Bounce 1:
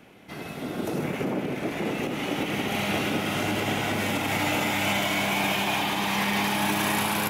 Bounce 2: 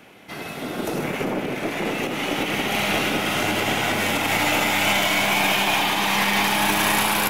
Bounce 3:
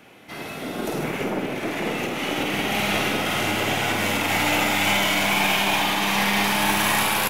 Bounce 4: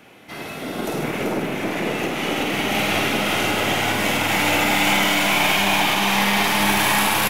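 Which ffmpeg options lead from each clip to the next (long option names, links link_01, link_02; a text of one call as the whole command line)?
ffmpeg -i in.wav -af "lowshelf=frequency=400:gain=-7,aeval=exprs='0.2*(cos(1*acos(clip(val(0)/0.2,-1,1)))-cos(1*PI/2))+0.0447*(cos(2*acos(clip(val(0)/0.2,-1,1)))-cos(2*PI/2))':channel_layout=same,volume=6.5dB" out.wav
ffmpeg -i in.wav -filter_complex "[0:a]asplit=2[link_01][link_02];[link_02]adelay=50,volume=-5dB[link_03];[link_01][link_03]amix=inputs=2:normalize=0,volume=-2dB" out.wav
ffmpeg -i in.wav -af "aecho=1:1:386:0.531,volume=1.5dB" out.wav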